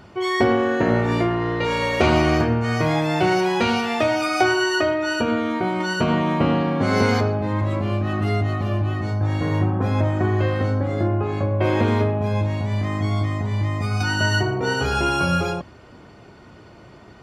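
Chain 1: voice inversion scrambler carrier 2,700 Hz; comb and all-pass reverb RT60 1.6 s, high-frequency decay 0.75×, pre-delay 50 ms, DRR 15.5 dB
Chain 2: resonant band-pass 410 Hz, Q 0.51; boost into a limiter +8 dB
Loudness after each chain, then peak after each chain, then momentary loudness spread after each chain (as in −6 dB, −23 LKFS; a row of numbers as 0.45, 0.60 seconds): −18.0, −16.0 LKFS; −3.0, −1.0 dBFS; 4, 7 LU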